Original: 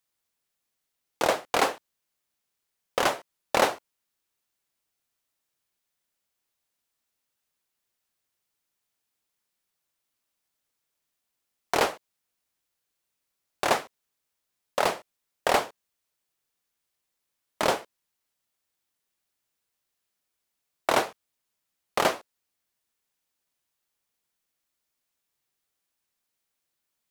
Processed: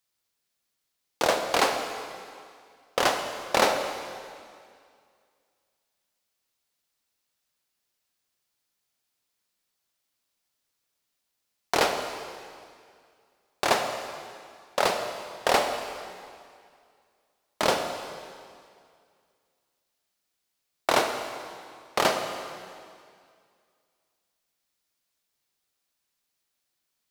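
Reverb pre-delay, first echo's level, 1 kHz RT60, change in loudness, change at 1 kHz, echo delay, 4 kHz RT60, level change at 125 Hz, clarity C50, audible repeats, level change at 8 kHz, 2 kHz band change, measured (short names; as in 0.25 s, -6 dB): 24 ms, none, 2.2 s, 0.0 dB, +1.0 dB, none, 2.1 s, +1.0 dB, 6.0 dB, none, +2.5 dB, +1.5 dB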